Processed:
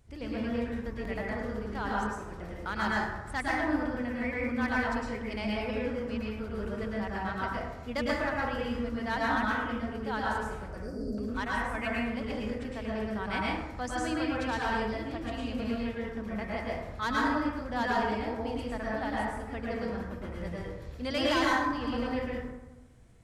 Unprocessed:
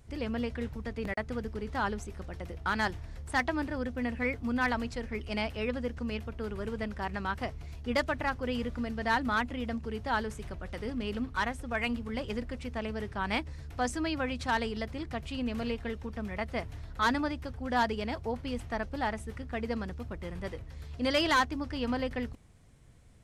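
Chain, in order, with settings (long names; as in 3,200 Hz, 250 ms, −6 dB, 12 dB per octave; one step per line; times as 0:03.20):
0:10.68–0:11.18: Chebyshev band-stop filter 700–4,600 Hz, order 5
dense smooth reverb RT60 1.1 s, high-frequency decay 0.45×, pre-delay 95 ms, DRR −5 dB
level −5.5 dB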